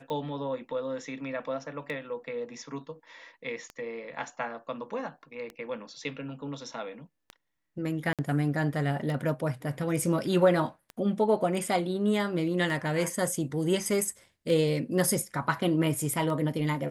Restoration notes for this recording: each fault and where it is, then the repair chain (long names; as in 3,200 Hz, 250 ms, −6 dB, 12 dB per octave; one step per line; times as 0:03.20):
scratch tick 33 1/3 rpm −24 dBFS
0:08.13–0:08.19: drop-out 57 ms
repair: click removal
repair the gap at 0:08.13, 57 ms